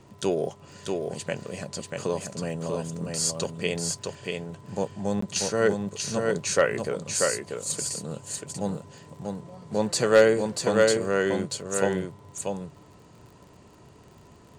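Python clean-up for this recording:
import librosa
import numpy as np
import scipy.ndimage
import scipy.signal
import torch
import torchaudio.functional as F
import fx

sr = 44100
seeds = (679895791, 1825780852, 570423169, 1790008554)

y = fx.fix_declip(x, sr, threshold_db=-8.5)
y = fx.fix_declick_ar(y, sr, threshold=6.5)
y = fx.fix_interpolate(y, sr, at_s=(5.21,), length_ms=14.0)
y = fx.fix_echo_inverse(y, sr, delay_ms=638, level_db=-4.0)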